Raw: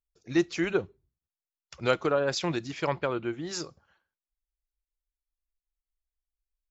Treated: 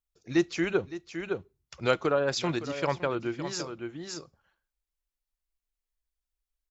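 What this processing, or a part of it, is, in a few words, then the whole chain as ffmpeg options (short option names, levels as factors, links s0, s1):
ducked delay: -filter_complex "[0:a]asplit=3[s0][s1][s2];[s1]adelay=562,volume=0.631[s3];[s2]apad=whole_len=320413[s4];[s3][s4]sidechaincompress=threshold=0.0158:ratio=8:attack=16:release=507[s5];[s0][s5]amix=inputs=2:normalize=0"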